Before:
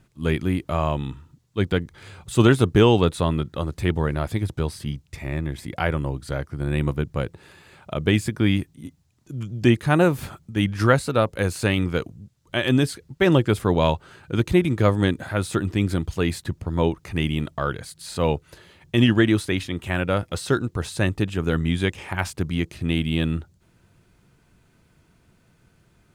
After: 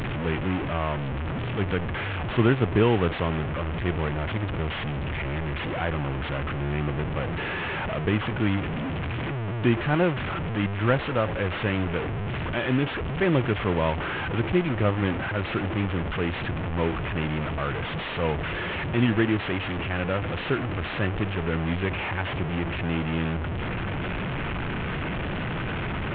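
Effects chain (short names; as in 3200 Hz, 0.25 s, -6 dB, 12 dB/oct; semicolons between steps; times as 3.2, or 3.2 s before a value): delta modulation 16 kbps, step -18 dBFS; gain -5 dB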